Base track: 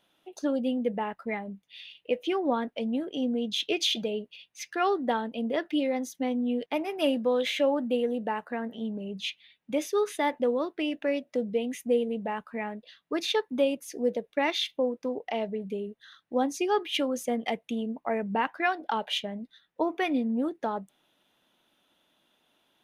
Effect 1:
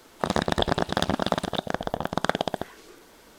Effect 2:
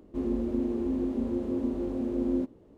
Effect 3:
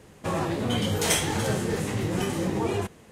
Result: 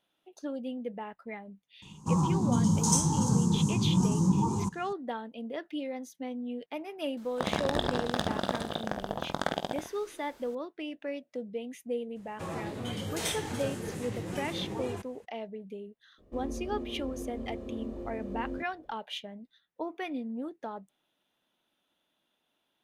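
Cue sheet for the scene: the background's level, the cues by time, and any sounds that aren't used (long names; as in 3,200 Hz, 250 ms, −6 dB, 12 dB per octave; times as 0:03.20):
base track −8.5 dB
0:01.82: mix in 3 −3.5 dB + drawn EQ curve 100 Hz 0 dB, 170 Hz +12 dB, 660 Hz −18 dB, 940 Hz +9 dB, 1,900 Hz −28 dB, 3,500 Hz −14 dB, 6,400 Hz +8 dB, 14,000 Hz −12 dB
0:07.17: mix in 1 −7 dB + ambience of single reflections 20 ms −11.5 dB, 48 ms −10 dB, 73 ms −9.5 dB
0:12.15: mix in 3 −10 dB, fades 0.02 s
0:16.18: mix in 2 −6.5 dB + comb filter 1.7 ms, depth 47%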